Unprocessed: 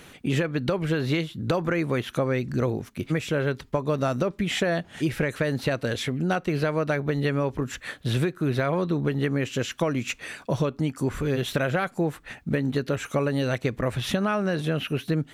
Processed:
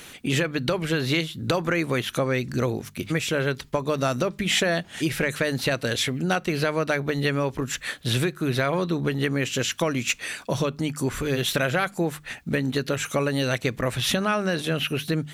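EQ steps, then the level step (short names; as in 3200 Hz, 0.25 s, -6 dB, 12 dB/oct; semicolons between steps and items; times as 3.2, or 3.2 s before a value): high shelf 2100 Hz +9.5 dB; notches 50/100/150/200 Hz; 0.0 dB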